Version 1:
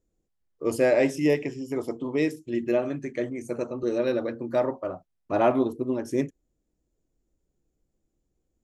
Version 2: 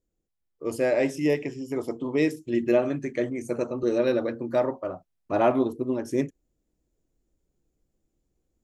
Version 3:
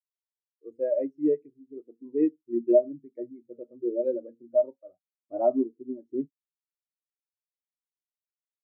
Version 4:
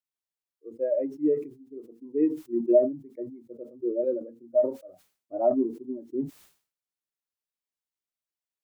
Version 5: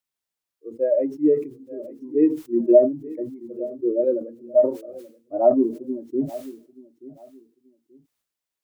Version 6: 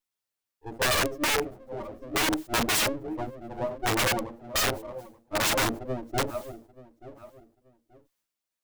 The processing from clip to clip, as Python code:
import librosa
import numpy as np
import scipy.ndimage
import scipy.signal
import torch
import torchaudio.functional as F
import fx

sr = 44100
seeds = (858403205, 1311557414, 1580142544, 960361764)

y1 = fx.rider(x, sr, range_db=10, speed_s=2.0)
y2 = fx.spectral_expand(y1, sr, expansion=2.5)
y3 = fx.sustainer(y2, sr, db_per_s=130.0)
y4 = fx.echo_feedback(y3, sr, ms=881, feedback_pct=26, wet_db=-18.0)
y4 = y4 * librosa.db_to_amplitude(6.0)
y5 = fx.lower_of_two(y4, sr, delay_ms=9.5)
y5 = (np.mod(10.0 ** (19.5 / 20.0) * y5 + 1.0, 2.0) - 1.0) / 10.0 ** (19.5 / 20.0)